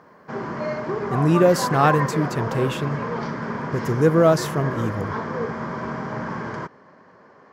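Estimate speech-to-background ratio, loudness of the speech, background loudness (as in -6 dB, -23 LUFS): 7.0 dB, -21.0 LUFS, -28.0 LUFS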